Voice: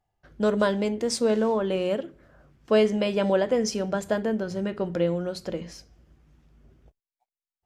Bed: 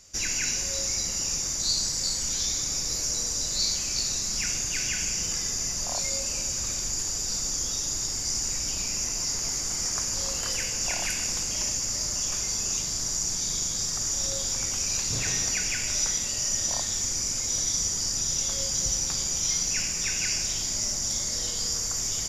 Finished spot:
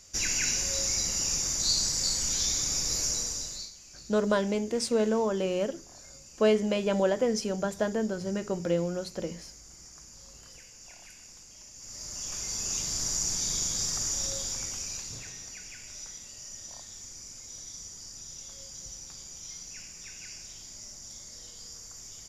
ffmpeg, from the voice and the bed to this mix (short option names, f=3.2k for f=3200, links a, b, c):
-filter_complex "[0:a]adelay=3700,volume=-3dB[a];[1:a]volume=19.5dB,afade=t=out:st=3.04:d=0.67:silence=0.0891251,afade=t=in:st=11.73:d=1.29:silence=0.1,afade=t=out:st=13.9:d=1.42:silence=0.177828[b];[a][b]amix=inputs=2:normalize=0"